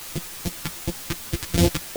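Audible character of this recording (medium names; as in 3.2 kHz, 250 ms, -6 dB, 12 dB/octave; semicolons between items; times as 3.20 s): a buzz of ramps at a fixed pitch in blocks of 256 samples; phasing stages 2, 2.6 Hz, lowest notch 550–1300 Hz; a quantiser's noise floor 6-bit, dither triangular; a shimmering, thickened sound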